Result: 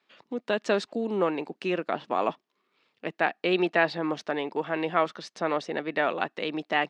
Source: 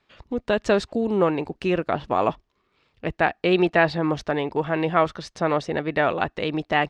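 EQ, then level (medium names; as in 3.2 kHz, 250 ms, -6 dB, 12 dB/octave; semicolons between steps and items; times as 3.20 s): high-pass 190 Hz 24 dB/octave; low-pass 3.5 kHz 6 dB/octave; treble shelf 2.4 kHz +8.5 dB; -5.5 dB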